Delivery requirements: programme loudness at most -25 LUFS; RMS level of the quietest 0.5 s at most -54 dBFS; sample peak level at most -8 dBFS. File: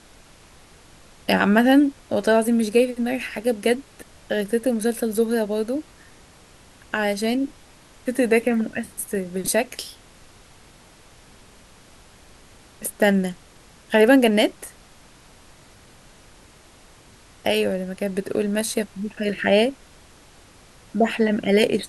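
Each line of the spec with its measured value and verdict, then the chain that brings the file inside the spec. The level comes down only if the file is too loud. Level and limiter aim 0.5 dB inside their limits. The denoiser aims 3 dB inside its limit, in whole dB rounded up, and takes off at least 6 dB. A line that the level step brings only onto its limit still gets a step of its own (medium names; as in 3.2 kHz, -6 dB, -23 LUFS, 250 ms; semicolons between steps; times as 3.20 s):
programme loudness -22.0 LUFS: fail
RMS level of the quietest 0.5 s -50 dBFS: fail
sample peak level -3.5 dBFS: fail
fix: noise reduction 6 dB, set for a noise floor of -50 dBFS; trim -3.5 dB; peak limiter -8.5 dBFS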